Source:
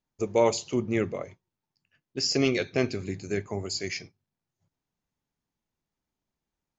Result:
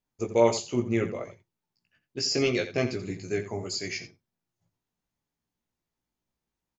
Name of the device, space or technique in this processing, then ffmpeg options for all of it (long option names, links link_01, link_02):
slapback doubling: -filter_complex "[0:a]asplit=3[link_01][link_02][link_03];[link_02]adelay=17,volume=-4dB[link_04];[link_03]adelay=86,volume=-11.5dB[link_05];[link_01][link_04][link_05]amix=inputs=3:normalize=0,volume=-2dB"